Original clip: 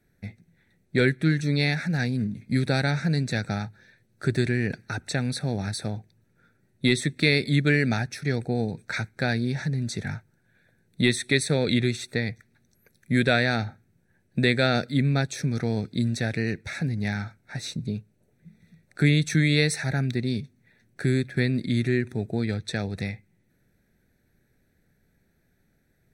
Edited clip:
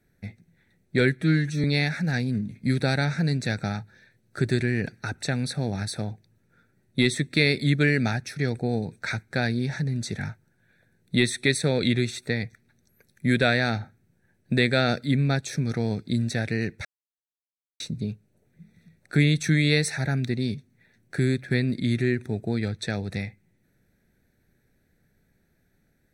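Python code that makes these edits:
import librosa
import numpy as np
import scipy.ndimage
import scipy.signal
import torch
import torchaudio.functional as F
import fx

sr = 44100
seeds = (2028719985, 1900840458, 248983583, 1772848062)

y = fx.edit(x, sr, fx.stretch_span(start_s=1.22, length_s=0.28, factor=1.5),
    fx.silence(start_s=16.71, length_s=0.95), tone=tone)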